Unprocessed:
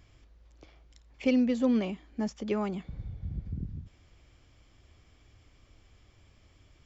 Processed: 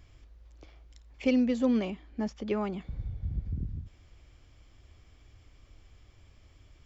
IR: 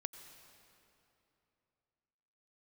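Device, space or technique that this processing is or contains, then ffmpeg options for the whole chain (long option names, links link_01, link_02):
low shelf boost with a cut just above: -filter_complex "[0:a]lowshelf=frequency=89:gain=6,equalizer=frequency=170:width_type=o:width=0.77:gain=-3,asettb=1/sr,asplit=3[link_01][link_02][link_03];[link_01]atrim=end=1.904[link_04];[link_02]atrim=start=1.9:end=2.81,asetpts=PTS-STARTPTS,afade=type=in:duration=0.004:curve=qsin,afade=type=out:start_time=0.906:duration=0.004:curve=qsin,lowpass=5100[link_05];[link_03]atrim=start=2.806[link_06];[link_04][link_05]acrossfade=duration=0.004:curve1=hsin:curve2=qsin[link_07];[link_07][link_06]acrossfade=duration=0.004:curve1=qsin:curve2=hsin"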